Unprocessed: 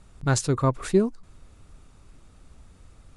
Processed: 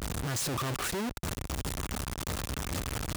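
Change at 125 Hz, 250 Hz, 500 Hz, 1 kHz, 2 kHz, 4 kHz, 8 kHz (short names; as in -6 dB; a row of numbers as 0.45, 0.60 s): -6.5, -8.5, -11.5, -4.0, 0.0, +4.0, 0.0 dB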